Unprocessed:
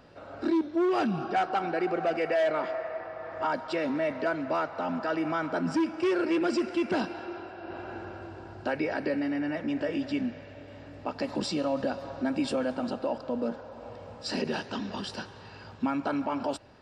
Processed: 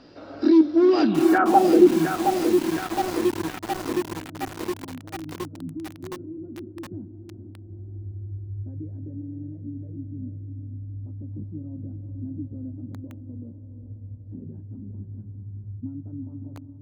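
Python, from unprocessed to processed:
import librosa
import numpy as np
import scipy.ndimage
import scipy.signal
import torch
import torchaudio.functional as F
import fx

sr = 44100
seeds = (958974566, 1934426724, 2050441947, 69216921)

p1 = fx.peak_eq(x, sr, hz=300.0, db=12.0, octaves=0.72)
p2 = fx.doubler(p1, sr, ms=19.0, db=-12.5)
p3 = p2 + fx.echo_diffused(p2, sr, ms=453, feedback_pct=41, wet_db=-8.0, dry=0)
p4 = fx.filter_sweep_lowpass(p3, sr, from_hz=5100.0, to_hz=100.0, start_s=1.02, end_s=2.19, q=3.9)
y = fx.echo_crushed(p4, sr, ms=716, feedback_pct=80, bits=5, wet_db=-5.5)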